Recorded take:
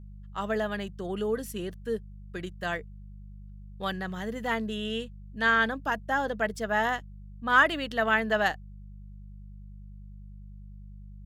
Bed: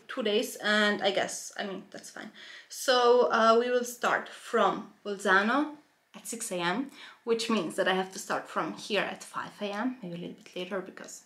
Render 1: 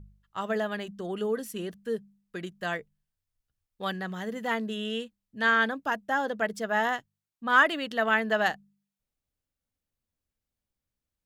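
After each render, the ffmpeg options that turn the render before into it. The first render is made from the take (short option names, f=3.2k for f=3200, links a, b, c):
-af "bandreject=f=50:t=h:w=4,bandreject=f=100:t=h:w=4,bandreject=f=150:t=h:w=4,bandreject=f=200:t=h:w=4"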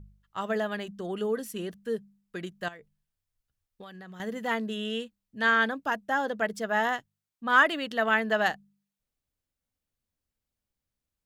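-filter_complex "[0:a]asettb=1/sr,asplit=3[a][b][c];[a]atrim=end=2.684[d];[b]atrim=start=2.68:end=4.2,asetpts=PTS-STARTPTS,afade=t=in:d=0.004:c=qsin,afade=t=out:st=1.516:d=0.004:c=qsin,acompressor=threshold=-41dB:ratio=20:attack=3.2:release=140:knee=1:detection=peak[e];[c]atrim=start=4.196[f];[d][e]acrossfade=d=0.004:c1=hsin:c2=qsin[g];[g][f]acrossfade=d=0.004:c1=qsin:c2=hsin"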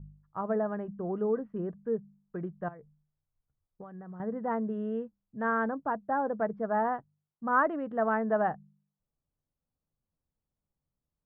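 -af "lowpass=f=1.2k:w=0.5412,lowpass=f=1.2k:w=1.3066,equalizer=f=150:t=o:w=0.26:g=11.5"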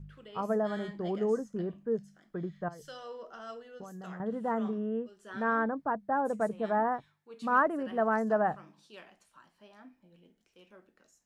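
-filter_complex "[1:a]volume=-22dB[a];[0:a][a]amix=inputs=2:normalize=0"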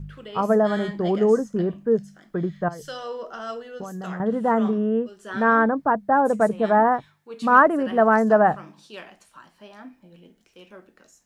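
-af "volume=11dB"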